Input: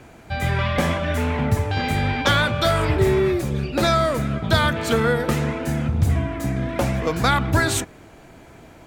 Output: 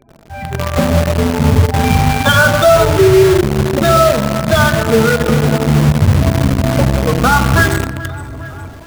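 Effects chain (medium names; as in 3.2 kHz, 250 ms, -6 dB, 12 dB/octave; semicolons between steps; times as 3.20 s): 2.35–3.59 s: peaking EQ 750 Hz +4 dB 1.9 oct; hum notches 60/120/180/240/300/360/420/480 Hz; on a send: two-band feedback delay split 500 Hz, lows 244 ms, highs 421 ms, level -14.5 dB; on the sum: spectral gate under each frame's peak -10 dB strong; 0.70–1.84 s: low-pass 1.2 kHz 12 dB/octave; simulated room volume 3300 m³, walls mixed, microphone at 1.4 m; level rider gain up to 10 dB; in parallel at -6 dB: companded quantiser 2-bit; on the sum: trim -4 dB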